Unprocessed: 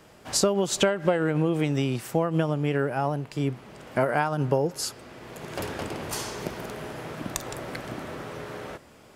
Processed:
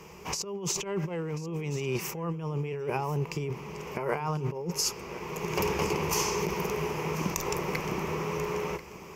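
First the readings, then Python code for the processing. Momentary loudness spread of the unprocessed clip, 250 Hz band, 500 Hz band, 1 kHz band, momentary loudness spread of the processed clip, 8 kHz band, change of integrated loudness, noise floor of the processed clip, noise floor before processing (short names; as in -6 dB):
14 LU, -6.0 dB, -4.5 dB, -2.5 dB, 7 LU, -0.5 dB, -4.0 dB, -46 dBFS, -53 dBFS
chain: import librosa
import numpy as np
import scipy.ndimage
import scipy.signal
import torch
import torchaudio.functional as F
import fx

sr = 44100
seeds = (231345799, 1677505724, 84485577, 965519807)

y = fx.ripple_eq(x, sr, per_octave=0.78, db=13)
y = fx.over_compress(y, sr, threshold_db=-29.0, ratio=-1.0)
y = y + 10.0 ** (-16.0 / 20.0) * np.pad(y, (int(1038 * sr / 1000.0), 0))[:len(y)]
y = y * 10.0 ** (-2.0 / 20.0)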